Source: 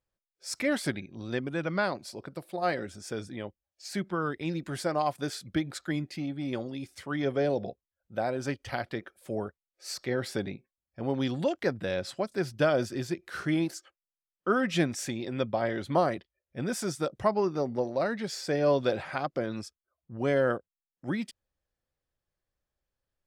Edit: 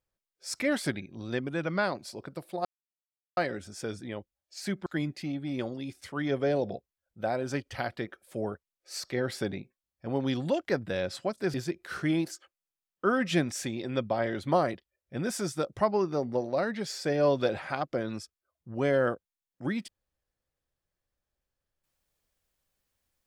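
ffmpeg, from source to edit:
-filter_complex "[0:a]asplit=4[a][b][c][d];[a]atrim=end=2.65,asetpts=PTS-STARTPTS,afade=t=out:st=2.646:d=0.004:c=hsin,apad=pad_dur=0.72[e];[b]atrim=start=2.65:end=4.142,asetpts=PTS-STARTPTS,afade=t=in:d=0.004:c=hsin[f];[c]atrim=start=5.798:end=12.482[g];[d]atrim=start=12.968[h];[e][f]concat=n=2:v=0:a=1[i];[i][g]acrossfade=d=0.004:c1=hsin:c2=hsin[j];[j][h]acrossfade=d=0.004:c1=hsin:c2=hsin"

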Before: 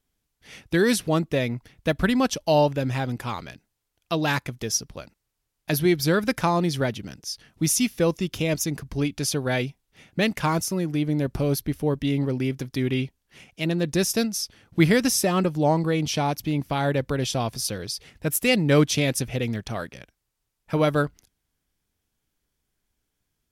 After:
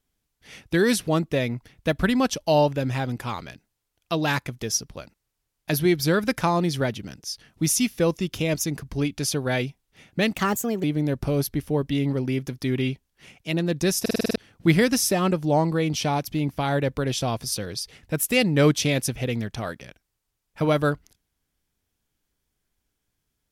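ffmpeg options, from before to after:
-filter_complex "[0:a]asplit=10[a][b][c][d][e][f][g][h][i][j];[a]atrim=end=10.344[k];[b]atrim=start=10.34:end=10.96,asetpts=PTS-STARTPTS,asetrate=55125,aresample=44100[l];[c]atrim=start=10.956:end=14.182[m];[d]atrim=start=14.128:end=14.182[n];[e]atrim=start=14.128:end=14.182[o];[f]atrim=start=14.128:end=14.182[p];[g]atrim=start=14.128:end=14.182[q];[h]atrim=start=14.128:end=14.182[r];[i]atrim=start=14.128:end=14.182[s];[j]atrim=start=14.478[t];[k][l]acrossfade=d=0.004:c1=hsin:c2=hsin[u];[u][m]acrossfade=d=0.004:c1=hsin:c2=hsin[v];[v][n]acrossfade=d=0.004:c1=hsin:c2=hsin[w];[w][o]acrossfade=d=0.004:c1=hsin:c2=hsin[x];[x][p]acrossfade=d=0.004:c1=hsin:c2=hsin[y];[y][q]acrossfade=d=0.004:c1=hsin:c2=hsin[z];[z][r]acrossfade=d=0.004:c1=hsin:c2=hsin[aa];[aa][s]acrossfade=d=0.004:c1=hsin:c2=hsin[ab];[ab][t]acrossfade=d=0.004:c1=hsin:c2=hsin"

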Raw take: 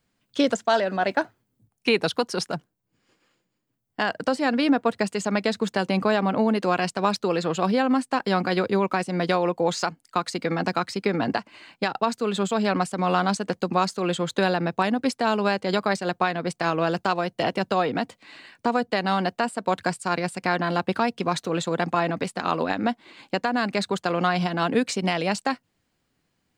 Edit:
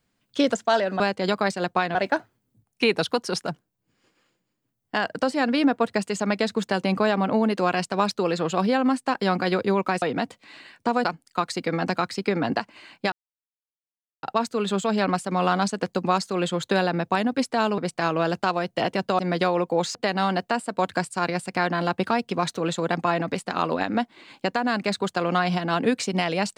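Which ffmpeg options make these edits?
-filter_complex "[0:a]asplit=9[a][b][c][d][e][f][g][h][i];[a]atrim=end=1.002[j];[b]atrim=start=15.448:end=16.402[k];[c]atrim=start=0.998:end=9.072[l];[d]atrim=start=17.808:end=18.842[m];[e]atrim=start=9.828:end=11.9,asetpts=PTS-STARTPTS,afade=t=out:st=2.068:d=0.004:c=hsin,apad=pad_dur=1.11[n];[f]atrim=start=11.9:end=15.452,asetpts=PTS-STARTPTS,afade=t=in:d=0.004:c=hsin[o];[g]atrim=start=16.398:end=17.812[p];[h]atrim=start=9.068:end=9.832[q];[i]atrim=start=18.838[r];[j][k]acrossfade=d=0.004:c1=hsin:c2=hsin[s];[s][l]acrossfade=d=0.004:c1=hsin:c2=hsin[t];[t][m]acrossfade=d=0.004:c1=hsin:c2=hsin[u];[n][o]concat=n=2:v=0:a=1[v];[u][v]acrossfade=d=0.004:c1=hsin:c2=hsin[w];[w][p]acrossfade=d=0.004:c1=hsin:c2=hsin[x];[x][q]acrossfade=d=0.004:c1=hsin:c2=hsin[y];[y][r]acrossfade=d=0.004:c1=hsin:c2=hsin"

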